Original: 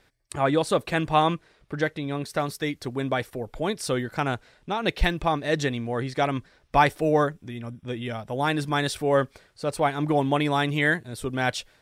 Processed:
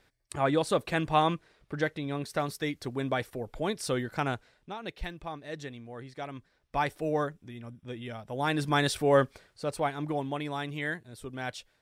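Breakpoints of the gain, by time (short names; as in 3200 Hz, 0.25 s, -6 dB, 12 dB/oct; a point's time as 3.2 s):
4.28 s -4 dB
4.94 s -15 dB
6.26 s -15 dB
7.05 s -8 dB
8.21 s -8 dB
8.72 s -1 dB
9.24 s -1 dB
10.35 s -11 dB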